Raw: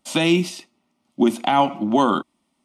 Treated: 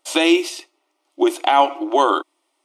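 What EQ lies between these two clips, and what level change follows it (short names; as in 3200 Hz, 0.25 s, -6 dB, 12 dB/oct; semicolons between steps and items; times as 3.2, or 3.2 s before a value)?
brick-wall FIR high-pass 290 Hz; +3.5 dB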